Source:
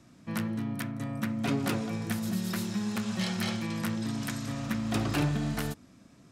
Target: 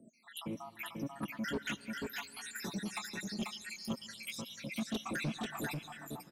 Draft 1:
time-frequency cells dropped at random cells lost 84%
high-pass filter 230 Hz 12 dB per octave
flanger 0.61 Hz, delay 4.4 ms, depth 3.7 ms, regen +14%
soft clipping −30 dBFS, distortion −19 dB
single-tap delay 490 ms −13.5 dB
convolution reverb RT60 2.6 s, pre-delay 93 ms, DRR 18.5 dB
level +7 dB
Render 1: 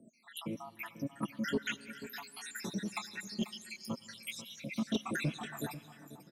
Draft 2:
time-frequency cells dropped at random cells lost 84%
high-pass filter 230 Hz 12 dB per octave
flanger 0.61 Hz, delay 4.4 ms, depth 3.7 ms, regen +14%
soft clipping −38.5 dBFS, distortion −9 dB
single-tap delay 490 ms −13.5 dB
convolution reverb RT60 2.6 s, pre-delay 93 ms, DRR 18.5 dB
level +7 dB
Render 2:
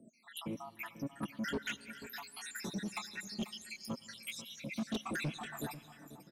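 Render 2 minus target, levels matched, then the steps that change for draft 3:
echo-to-direct −9 dB
change: single-tap delay 490 ms −3.5 dB

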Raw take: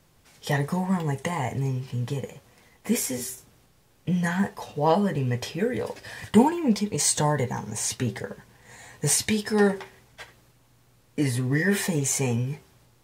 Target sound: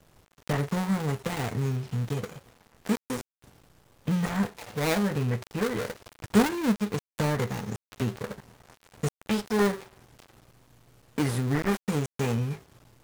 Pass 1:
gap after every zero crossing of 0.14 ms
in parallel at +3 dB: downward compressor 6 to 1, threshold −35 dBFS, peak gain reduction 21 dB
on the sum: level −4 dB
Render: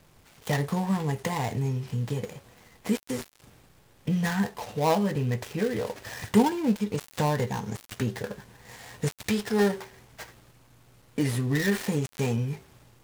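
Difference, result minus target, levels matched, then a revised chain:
gap after every zero crossing: distortion −4 dB
gap after every zero crossing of 0.43 ms
in parallel at +3 dB: downward compressor 6 to 1, threshold −35 dBFS, peak gain reduction 21 dB
on the sum: level −4 dB

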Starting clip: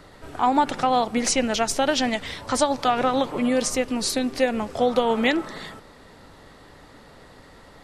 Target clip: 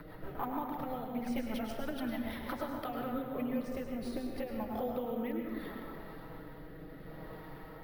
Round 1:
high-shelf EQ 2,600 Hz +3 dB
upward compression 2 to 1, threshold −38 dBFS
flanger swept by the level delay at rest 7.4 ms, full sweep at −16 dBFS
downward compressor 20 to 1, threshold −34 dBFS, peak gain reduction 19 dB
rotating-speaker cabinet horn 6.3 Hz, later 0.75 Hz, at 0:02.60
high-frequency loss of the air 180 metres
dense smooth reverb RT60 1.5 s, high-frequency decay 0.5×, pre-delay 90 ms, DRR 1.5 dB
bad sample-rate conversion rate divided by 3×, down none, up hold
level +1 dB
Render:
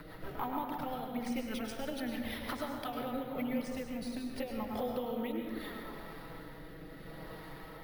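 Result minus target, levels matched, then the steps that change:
4,000 Hz band +5.0 dB
change: high-shelf EQ 2,600 Hz −8.5 dB

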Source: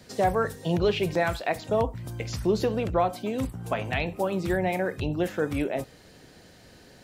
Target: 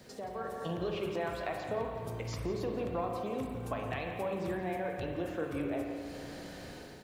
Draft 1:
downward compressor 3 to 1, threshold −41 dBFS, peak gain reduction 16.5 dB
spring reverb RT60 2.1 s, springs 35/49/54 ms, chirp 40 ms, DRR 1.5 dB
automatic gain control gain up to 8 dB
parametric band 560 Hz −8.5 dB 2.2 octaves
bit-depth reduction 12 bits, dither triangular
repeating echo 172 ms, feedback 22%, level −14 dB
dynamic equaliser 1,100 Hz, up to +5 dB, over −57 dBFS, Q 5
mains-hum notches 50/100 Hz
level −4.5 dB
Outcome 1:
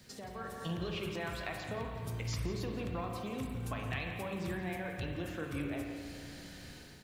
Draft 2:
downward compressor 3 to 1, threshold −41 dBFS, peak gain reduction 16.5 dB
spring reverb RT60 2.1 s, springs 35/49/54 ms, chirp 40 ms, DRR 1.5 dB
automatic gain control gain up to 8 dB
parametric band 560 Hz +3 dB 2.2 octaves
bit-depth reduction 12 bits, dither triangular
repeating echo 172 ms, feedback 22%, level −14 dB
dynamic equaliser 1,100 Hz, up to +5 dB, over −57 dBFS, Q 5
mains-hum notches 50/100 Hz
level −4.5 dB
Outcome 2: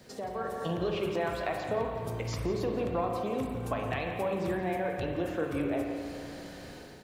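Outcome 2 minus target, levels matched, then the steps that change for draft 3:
downward compressor: peak gain reduction −4 dB
change: downward compressor 3 to 1, threshold −47 dBFS, peak gain reduction 20.5 dB

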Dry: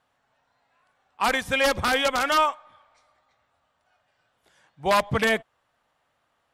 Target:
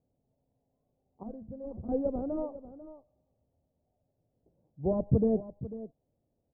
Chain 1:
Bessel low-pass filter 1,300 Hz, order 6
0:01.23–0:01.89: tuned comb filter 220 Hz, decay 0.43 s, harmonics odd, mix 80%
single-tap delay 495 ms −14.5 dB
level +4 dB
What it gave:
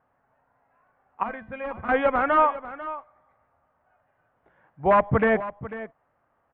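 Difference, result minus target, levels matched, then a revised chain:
1,000 Hz band +16.0 dB
Bessel low-pass filter 330 Hz, order 6
0:01.23–0:01.89: tuned comb filter 220 Hz, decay 0.43 s, harmonics odd, mix 80%
single-tap delay 495 ms −14.5 dB
level +4 dB

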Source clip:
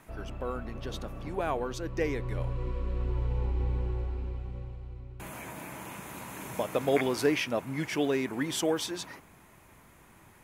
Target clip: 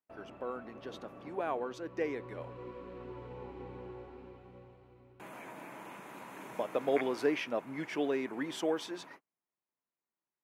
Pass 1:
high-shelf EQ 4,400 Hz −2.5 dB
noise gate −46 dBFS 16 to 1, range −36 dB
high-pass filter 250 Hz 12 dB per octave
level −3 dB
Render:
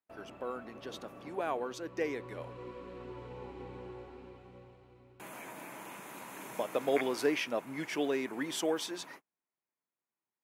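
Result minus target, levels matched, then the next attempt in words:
8,000 Hz band +7.5 dB
high-shelf EQ 4,400 Hz −14 dB
noise gate −46 dBFS 16 to 1, range −36 dB
high-pass filter 250 Hz 12 dB per octave
level −3 dB

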